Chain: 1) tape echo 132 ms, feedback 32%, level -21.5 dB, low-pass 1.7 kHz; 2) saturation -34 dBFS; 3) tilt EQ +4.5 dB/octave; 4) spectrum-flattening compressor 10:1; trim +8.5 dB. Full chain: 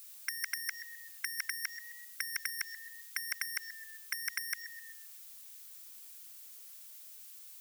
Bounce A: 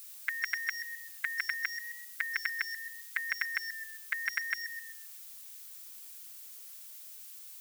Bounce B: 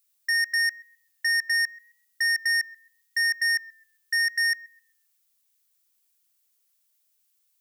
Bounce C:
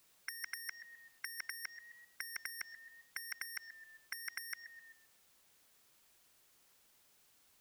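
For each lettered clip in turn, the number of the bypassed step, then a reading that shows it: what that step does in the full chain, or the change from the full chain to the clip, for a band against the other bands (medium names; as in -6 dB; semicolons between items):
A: 2, distortion -14 dB; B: 4, crest factor change -13.5 dB; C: 3, crest factor change -2.5 dB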